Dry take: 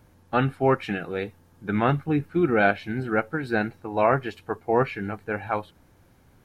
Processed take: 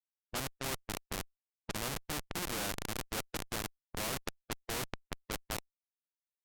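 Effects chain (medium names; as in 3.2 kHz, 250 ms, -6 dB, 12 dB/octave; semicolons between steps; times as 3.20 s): repeats whose band climbs or falls 208 ms, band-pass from 200 Hz, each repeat 0.7 oct, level -6 dB; Schmitt trigger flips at -21 dBFS; level-controlled noise filter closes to 460 Hz, open at -25 dBFS; spectrum-flattening compressor 2:1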